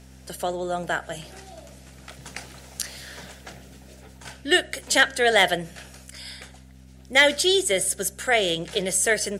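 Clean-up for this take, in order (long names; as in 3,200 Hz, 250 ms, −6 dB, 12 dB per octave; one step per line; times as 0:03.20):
clipped peaks rebuilt −6 dBFS
hum removal 64.8 Hz, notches 4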